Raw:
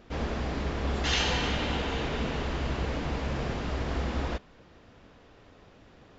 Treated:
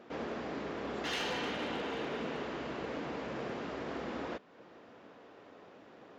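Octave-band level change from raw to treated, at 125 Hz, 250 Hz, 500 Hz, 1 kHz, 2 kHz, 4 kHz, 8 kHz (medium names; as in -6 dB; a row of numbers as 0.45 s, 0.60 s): -17.5 dB, -6.0 dB, -3.5 dB, -5.5 dB, -6.5 dB, -9.5 dB, no reading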